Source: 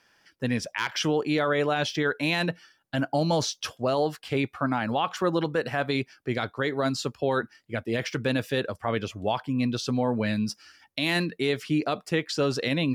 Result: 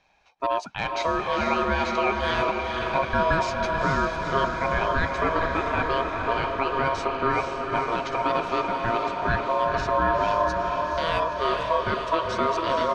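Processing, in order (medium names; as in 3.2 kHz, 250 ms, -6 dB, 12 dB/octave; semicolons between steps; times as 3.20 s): bass shelf 160 Hz +11.5 dB; band-stop 4 kHz, Q 12; comb 1.3 ms, depth 33%; small resonant body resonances 400/870/1600/2700 Hz, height 7 dB; ring modulator 810 Hz; distance through air 98 m; echo that smears into a reverb 474 ms, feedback 69%, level -4 dB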